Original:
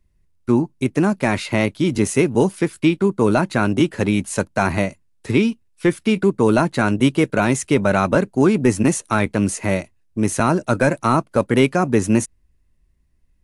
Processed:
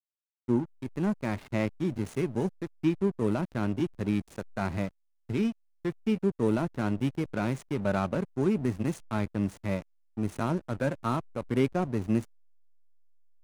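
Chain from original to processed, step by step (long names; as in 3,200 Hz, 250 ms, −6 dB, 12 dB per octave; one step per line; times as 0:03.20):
harmonic and percussive parts rebalanced percussive −8 dB
slack as between gear wheels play −23.5 dBFS
level −8.5 dB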